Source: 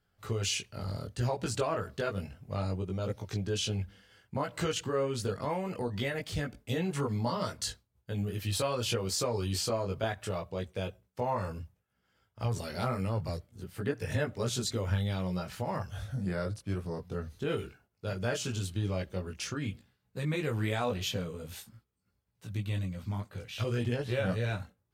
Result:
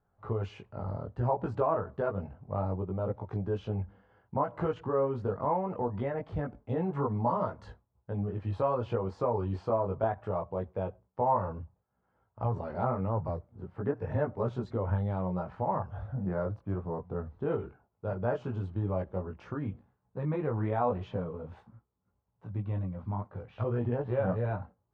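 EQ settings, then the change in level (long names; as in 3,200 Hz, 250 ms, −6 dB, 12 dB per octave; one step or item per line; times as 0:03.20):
low-pass with resonance 940 Hz, resonance Q 2.2
0.0 dB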